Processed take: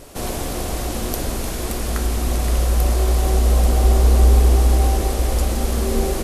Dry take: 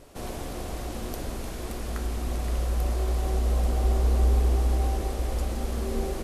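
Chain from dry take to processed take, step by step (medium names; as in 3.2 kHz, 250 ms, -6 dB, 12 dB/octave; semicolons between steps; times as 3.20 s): treble shelf 4.9 kHz +6.5 dB; trim +9 dB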